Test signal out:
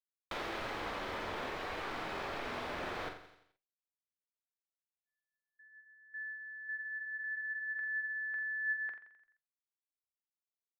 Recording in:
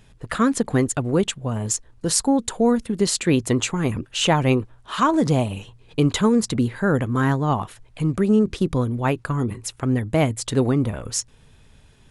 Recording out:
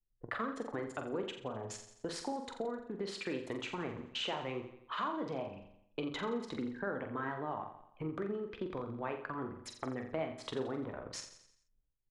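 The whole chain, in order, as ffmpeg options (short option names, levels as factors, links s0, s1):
-filter_complex "[0:a]bandreject=f=2800:w=25,agate=range=0.178:threshold=0.00355:ratio=16:detection=peak,anlmdn=39.8,acrossover=split=320 3900:gain=0.178 1 0.0631[s0][s1][s2];[s0][s1][s2]amix=inputs=3:normalize=0,asplit=2[s3][s4];[s4]alimiter=limit=0.15:level=0:latency=1,volume=1.26[s5];[s3][s5]amix=inputs=2:normalize=0,acompressor=threshold=0.0355:ratio=3,flanger=delay=8.3:depth=4.3:regen=75:speed=0.24:shape=sinusoidal,asplit=2[s6][s7];[s7]adelay=45,volume=0.447[s8];[s6][s8]amix=inputs=2:normalize=0,asplit=2[s9][s10];[s10]aecho=0:1:86|172|258|344|430:0.282|0.135|0.0649|0.0312|0.015[s11];[s9][s11]amix=inputs=2:normalize=0,adynamicequalizer=threshold=0.00562:dfrequency=2200:dqfactor=0.7:tfrequency=2200:tqfactor=0.7:attack=5:release=100:ratio=0.375:range=2:mode=cutabove:tftype=highshelf,volume=0.531"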